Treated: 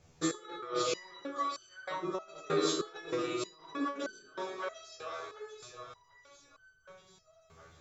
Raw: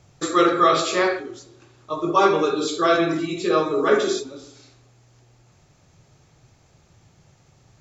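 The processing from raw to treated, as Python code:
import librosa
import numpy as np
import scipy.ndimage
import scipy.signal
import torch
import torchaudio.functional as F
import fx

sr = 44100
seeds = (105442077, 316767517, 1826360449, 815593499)

p1 = x + fx.echo_split(x, sr, split_hz=560.0, low_ms=155, high_ms=744, feedback_pct=52, wet_db=-7.0, dry=0)
p2 = fx.over_compress(p1, sr, threshold_db=-21.0, ratio=-0.5)
y = fx.resonator_held(p2, sr, hz=3.2, low_hz=81.0, high_hz=1500.0)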